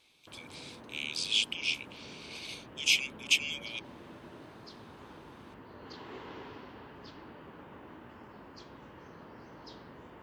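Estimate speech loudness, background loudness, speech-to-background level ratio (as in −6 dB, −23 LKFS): −31.0 LKFS, −50.0 LKFS, 19.0 dB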